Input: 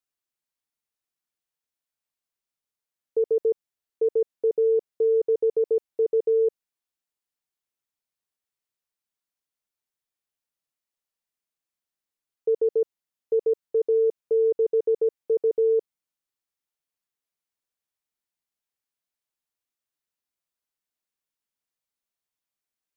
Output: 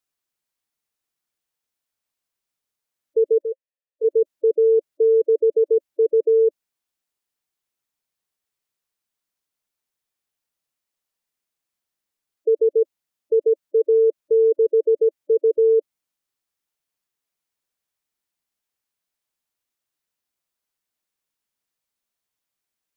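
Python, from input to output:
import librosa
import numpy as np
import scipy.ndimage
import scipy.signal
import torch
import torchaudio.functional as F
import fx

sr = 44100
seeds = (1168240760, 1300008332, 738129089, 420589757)

y = fx.spec_gate(x, sr, threshold_db=-20, keep='strong')
y = fx.vowel_filter(y, sr, vowel='e', at=(3.41, 4.03), fade=0.02)
y = y * 10.0 ** (5.0 / 20.0)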